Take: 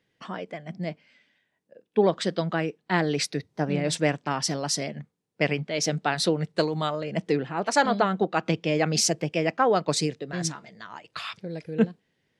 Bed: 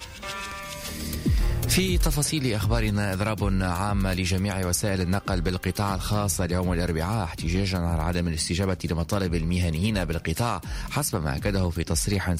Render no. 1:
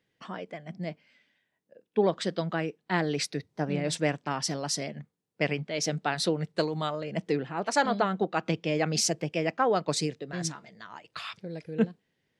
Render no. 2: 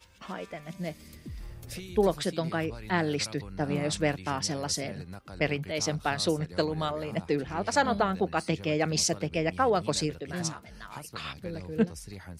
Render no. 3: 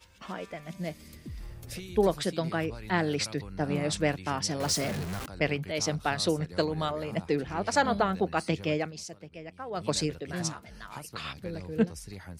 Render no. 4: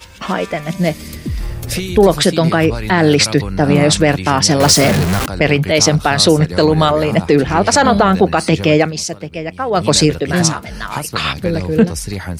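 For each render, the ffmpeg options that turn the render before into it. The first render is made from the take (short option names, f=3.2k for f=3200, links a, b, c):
-af "volume=-3.5dB"
-filter_complex "[1:a]volume=-18.5dB[a];[0:a][a]amix=inputs=2:normalize=0"
-filter_complex "[0:a]asettb=1/sr,asplit=3[a][b][c];[a]atrim=end=4.604[d];[b]atrim=start=4.6:end=5.26,asetpts=PTS-STARTPTS,afade=t=in:d=0.004:c=qsin,afade=t=out:st=0.656:d=0.004:c=qsin,aeval=exprs='val(0)+0.5*0.0266*sgn(val(0))':c=same[e];[c]atrim=start=5.256[f];[d][e]acrossfade=d=0.004:c1=hsin:c2=qsin[g];[g][f]acrossfade=d=0.004:c1=qsin:c2=hsin,asplit=3[h][i][j];[h]atrim=end=8.92,asetpts=PTS-STARTPTS,afade=t=out:st=8.73:d=0.19:silence=0.177828[k];[i]atrim=start=8.92:end=9.7,asetpts=PTS-STARTPTS,volume=-15dB[l];[j]atrim=start=9.7,asetpts=PTS-STARTPTS,afade=t=in:d=0.19:silence=0.177828[m];[k][l][m]concat=n=3:v=0:a=1"
-af "acontrast=88,alimiter=level_in=12.5dB:limit=-1dB:release=50:level=0:latency=1"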